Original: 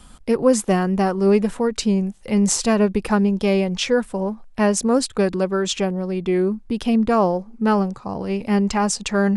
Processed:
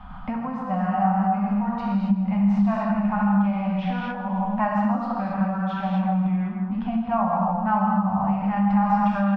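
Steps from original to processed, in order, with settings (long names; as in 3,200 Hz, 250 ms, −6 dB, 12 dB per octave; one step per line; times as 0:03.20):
high-frequency loss of the air 330 metres
on a send: repeating echo 161 ms, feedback 47%, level −13 dB
on the sum: reverb whose tail is shaped and stops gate 300 ms flat, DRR −5 dB
downward compressor 6 to 1, threshold −27 dBFS, peak gain reduction 19 dB
drawn EQ curve 130 Hz 0 dB, 200 Hz +8 dB, 400 Hz −27 dB, 750 Hz +13 dB, 6,200 Hz −11 dB
level +1.5 dB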